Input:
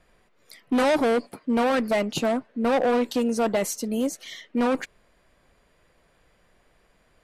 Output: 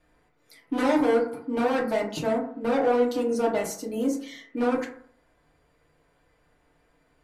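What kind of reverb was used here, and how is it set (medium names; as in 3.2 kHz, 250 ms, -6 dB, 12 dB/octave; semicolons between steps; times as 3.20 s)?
FDN reverb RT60 0.57 s, low-frequency decay 1×, high-frequency decay 0.35×, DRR -3.5 dB; trim -8 dB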